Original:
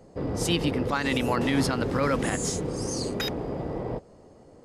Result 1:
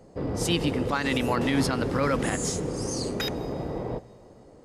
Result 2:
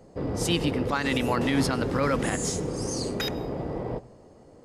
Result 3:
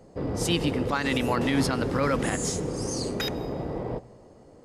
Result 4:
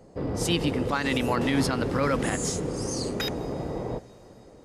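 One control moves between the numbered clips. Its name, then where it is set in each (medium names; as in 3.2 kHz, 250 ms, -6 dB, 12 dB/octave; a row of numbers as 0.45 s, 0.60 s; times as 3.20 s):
plate-style reverb, RT60: 2.5 s, 0.51 s, 1.2 s, 5.3 s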